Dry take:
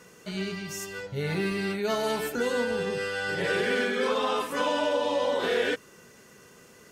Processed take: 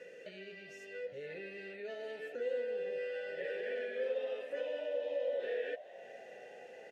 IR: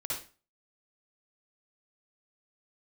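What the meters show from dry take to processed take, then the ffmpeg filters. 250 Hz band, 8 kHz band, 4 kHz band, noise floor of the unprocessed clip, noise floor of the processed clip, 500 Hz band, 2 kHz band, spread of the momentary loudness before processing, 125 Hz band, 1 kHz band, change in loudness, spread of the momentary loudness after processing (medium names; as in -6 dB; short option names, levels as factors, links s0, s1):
-23.5 dB, under -25 dB, -20.0 dB, -54 dBFS, -53 dBFS, -9.0 dB, -15.0 dB, 8 LU, under -25 dB, -24.5 dB, -11.5 dB, 15 LU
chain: -filter_complex "[0:a]acompressor=threshold=0.00398:ratio=2.5,asplit=3[s0][s1][s2];[s0]bandpass=f=530:t=q:w=8,volume=1[s3];[s1]bandpass=f=1840:t=q:w=8,volume=0.501[s4];[s2]bandpass=f=2480:t=q:w=8,volume=0.355[s5];[s3][s4][s5]amix=inputs=3:normalize=0,asplit=7[s6][s7][s8][s9][s10][s11][s12];[s7]adelay=418,afreqshift=55,volume=0.133[s13];[s8]adelay=836,afreqshift=110,volume=0.0851[s14];[s9]adelay=1254,afreqshift=165,volume=0.0543[s15];[s10]adelay=1672,afreqshift=220,volume=0.0351[s16];[s11]adelay=2090,afreqshift=275,volume=0.0224[s17];[s12]adelay=2508,afreqshift=330,volume=0.0143[s18];[s6][s13][s14][s15][s16][s17][s18]amix=inputs=7:normalize=0,volume=3.55"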